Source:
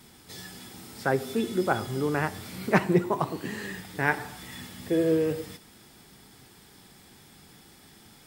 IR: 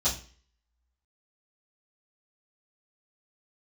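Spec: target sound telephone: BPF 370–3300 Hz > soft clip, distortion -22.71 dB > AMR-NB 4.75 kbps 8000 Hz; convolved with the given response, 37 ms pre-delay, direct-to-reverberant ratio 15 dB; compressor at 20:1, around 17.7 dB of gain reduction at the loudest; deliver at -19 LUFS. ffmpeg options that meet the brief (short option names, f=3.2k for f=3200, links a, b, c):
-filter_complex "[0:a]acompressor=threshold=-33dB:ratio=20,asplit=2[a][b];[1:a]atrim=start_sample=2205,adelay=37[c];[b][c]afir=irnorm=-1:irlink=0,volume=-23.5dB[d];[a][d]amix=inputs=2:normalize=0,highpass=370,lowpass=3.3k,asoftclip=threshold=-26.5dB,volume=26.5dB" -ar 8000 -c:a libopencore_amrnb -b:a 4750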